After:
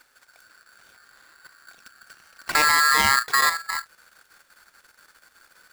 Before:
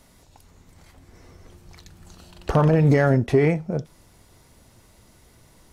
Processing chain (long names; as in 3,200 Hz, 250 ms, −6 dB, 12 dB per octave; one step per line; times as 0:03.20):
output level in coarse steps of 9 dB
ring modulator with a square carrier 1,500 Hz